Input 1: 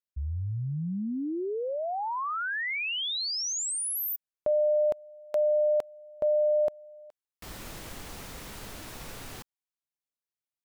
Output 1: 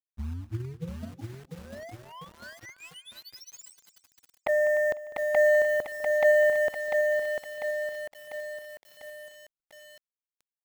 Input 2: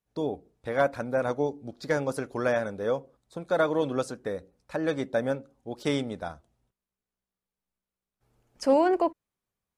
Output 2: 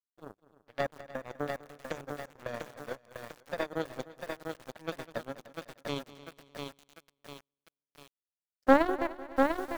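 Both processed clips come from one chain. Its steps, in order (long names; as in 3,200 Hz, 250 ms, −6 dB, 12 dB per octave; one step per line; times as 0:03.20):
noise gate −39 dBFS, range −11 dB
Butterworth low-pass 8,300 Hz 72 dB per octave
low-shelf EQ 250 Hz +4 dB
mains-hum notches 50/100/150/200/250/300/350/400 Hz
in parallel at −4.5 dB: bit reduction 7 bits
on the sum: flanger swept by the level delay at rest 10.4 ms, full sweep at −19 dBFS
power curve on the samples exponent 3
on a send: echo machine with several playback heads 100 ms, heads second and third, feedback 41%, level −18 dB
on the sum: feedback echo at a low word length 696 ms, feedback 55%, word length 8 bits, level −4.5 dB
level +2.5 dB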